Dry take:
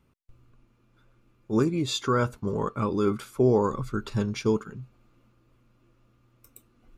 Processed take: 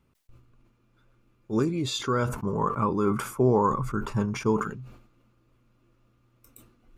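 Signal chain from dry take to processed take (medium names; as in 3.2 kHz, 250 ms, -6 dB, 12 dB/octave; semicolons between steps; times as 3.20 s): 2.29–4.67 s: fifteen-band graphic EQ 160 Hz +5 dB, 1 kHz +9 dB, 4 kHz -12 dB; decay stretcher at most 80 dB/s; trim -2 dB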